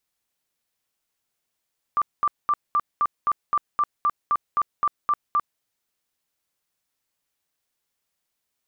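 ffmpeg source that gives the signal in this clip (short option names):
-f lavfi -i "aevalsrc='0.141*sin(2*PI*1180*mod(t,0.26))*lt(mod(t,0.26),56/1180)':d=3.64:s=44100"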